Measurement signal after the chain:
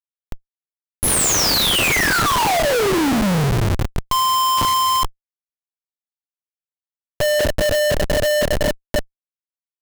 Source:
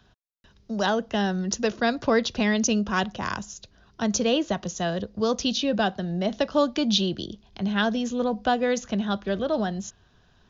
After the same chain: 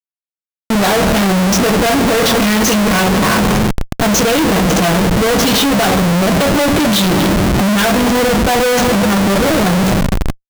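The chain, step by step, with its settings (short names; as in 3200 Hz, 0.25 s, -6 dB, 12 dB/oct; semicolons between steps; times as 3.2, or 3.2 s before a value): two-slope reverb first 0.22 s, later 3.9 s, from -21 dB, DRR -4 dB; Schmitt trigger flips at -29 dBFS; gain +8 dB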